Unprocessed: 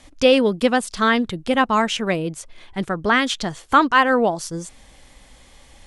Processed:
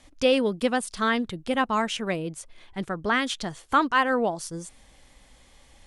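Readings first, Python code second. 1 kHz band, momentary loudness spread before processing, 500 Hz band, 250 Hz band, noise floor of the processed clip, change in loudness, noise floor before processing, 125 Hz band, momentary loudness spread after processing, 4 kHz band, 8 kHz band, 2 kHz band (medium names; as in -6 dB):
-6.5 dB, 15 LU, -6.5 dB, -6.5 dB, -56 dBFS, -6.5 dB, -50 dBFS, -6.5 dB, 14 LU, -6.5 dB, -5.0 dB, -6.5 dB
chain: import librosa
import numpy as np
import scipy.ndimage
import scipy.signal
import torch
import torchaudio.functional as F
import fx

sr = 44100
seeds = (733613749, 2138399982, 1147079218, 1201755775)

y = fx.dynamic_eq(x, sr, hz=9500.0, q=4.4, threshold_db=-53.0, ratio=4.0, max_db=6)
y = F.gain(torch.from_numpy(y), -6.5).numpy()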